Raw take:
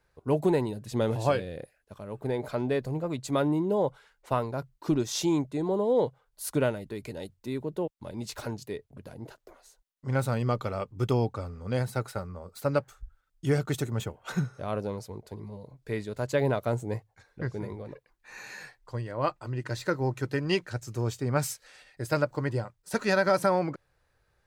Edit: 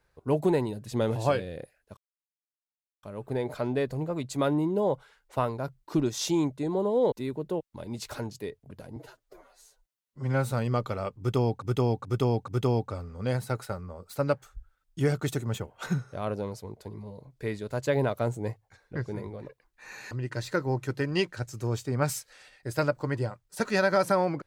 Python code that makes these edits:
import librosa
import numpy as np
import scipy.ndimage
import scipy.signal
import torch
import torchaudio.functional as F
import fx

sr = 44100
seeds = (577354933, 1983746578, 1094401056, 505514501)

y = fx.edit(x, sr, fx.insert_silence(at_s=1.97, length_s=1.06),
    fx.cut(start_s=6.06, length_s=1.33),
    fx.stretch_span(start_s=9.23, length_s=1.04, factor=1.5),
    fx.repeat(start_s=10.94, length_s=0.43, count=4),
    fx.cut(start_s=18.57, length_s=0.88), tone=tone)